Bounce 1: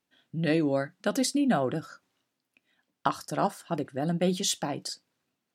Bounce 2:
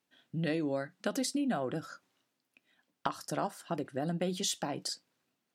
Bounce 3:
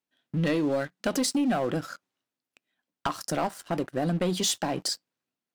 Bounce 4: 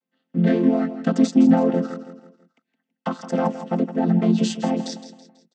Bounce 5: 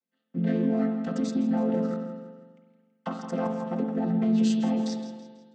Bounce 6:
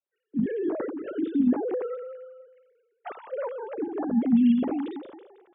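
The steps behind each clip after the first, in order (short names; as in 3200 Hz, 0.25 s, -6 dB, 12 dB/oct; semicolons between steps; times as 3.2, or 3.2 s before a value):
low shelf 67 Hz -11.5 dB; compressor 3:1, threshold -31 dBFS, peak gain reduction 9 dB
sample leveller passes 3; gain -3 dB
chord vocoder major triad, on F3; on a send: feedback echo 0.164 s, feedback 42%, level -12.5 dB; on the sum: gain +8.5 dB
limiter -13.5 dBFS, peak gain reduction 8 dB; on a send at -4 dB: reverb RT60 1.4 s, pre-delay 41 ms; on the sum: gain -7 dB
sine-wave speech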